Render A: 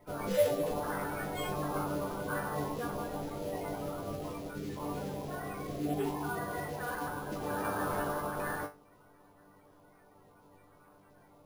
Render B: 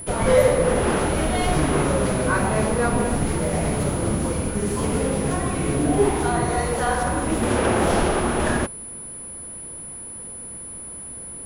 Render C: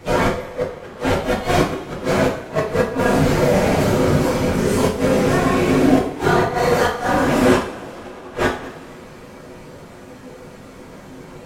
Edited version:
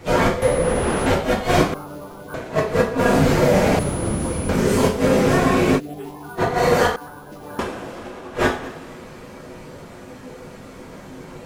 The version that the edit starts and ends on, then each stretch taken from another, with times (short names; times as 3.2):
C
0.42–1.06 from B
1.74–2.34 from A
3.79–4.49 from B
5.78–6.4 from A, crossfade 0.06 s
6.96–7.59 from A